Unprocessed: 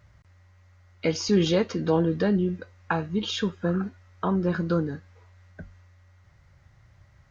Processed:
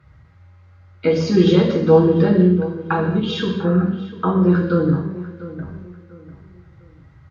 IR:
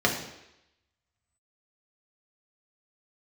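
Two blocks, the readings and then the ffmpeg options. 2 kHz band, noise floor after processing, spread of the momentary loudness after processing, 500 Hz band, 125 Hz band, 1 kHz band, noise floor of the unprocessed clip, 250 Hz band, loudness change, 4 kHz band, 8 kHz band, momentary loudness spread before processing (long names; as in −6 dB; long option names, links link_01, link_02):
+5.0 dB, −49 dBFS, 17 LU, +9.5 dB, +10.5 dB, +7.5 dB, −58 dBFS, +9.5 dB, +9.0 dB, +3.0 dB, can't be measured, 9 LU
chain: -filter_complex "[0:a]asplit=2[link_01][link_02];[link_02]adelay=696,lowpass=frequency=2300:poles=1,volume=-15dB,asplit=2[link_03][link_04];[link_04]adelay=696,lowpass=frequency=2300:poles=1,volume=0.33,asplit=2[link_05][link_06];[link_06]adelay=696,lowpass=frequency=2300:poles=1,volume=0.33[link_07];[link_01][link_03][link_05][link_07]amix=inputs=4:normalize=0[link_08];[1:a]atrim=start_sample=2205,afade=type=out:start_time=0.23:duration=0.01,atrim=end_sample=10584,asetrate=29547,aresample=44100[link_09];[link_08][link_09]afir=irnorm=-1:irlink=0,volume=-11dB"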